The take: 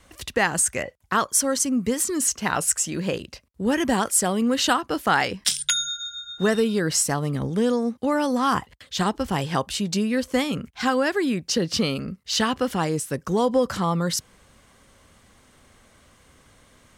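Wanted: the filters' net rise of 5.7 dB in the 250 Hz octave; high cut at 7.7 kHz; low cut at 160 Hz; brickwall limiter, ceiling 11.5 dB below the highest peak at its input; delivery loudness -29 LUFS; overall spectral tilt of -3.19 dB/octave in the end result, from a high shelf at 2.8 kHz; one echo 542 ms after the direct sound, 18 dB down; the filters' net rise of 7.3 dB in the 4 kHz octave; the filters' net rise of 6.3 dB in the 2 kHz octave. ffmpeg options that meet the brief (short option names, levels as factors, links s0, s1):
-af "highpass=160,lowpass=7700,equalizer=f=250:t=o:g=7.5,equalizer=f=2000:t=o:g=5.5,highshelf=f=2800:g=4,equalizer=f=4000:t=o:g=4.5,alimiter=limit=0.251:level=0:latency=1,aecho=1:1:542:0.126,volume=0.447"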